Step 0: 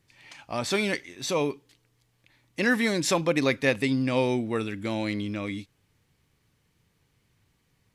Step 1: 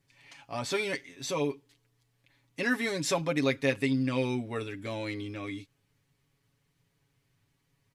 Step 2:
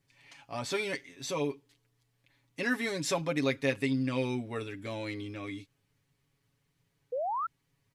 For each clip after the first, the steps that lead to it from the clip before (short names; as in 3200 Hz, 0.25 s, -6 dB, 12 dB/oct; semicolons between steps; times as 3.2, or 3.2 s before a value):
comb 7.2 ms, depth 71%; gain -6.5 dB
painted sound rise, 7.12–7.47, 470–1400 Hz -30 dBFS; gain -2 dB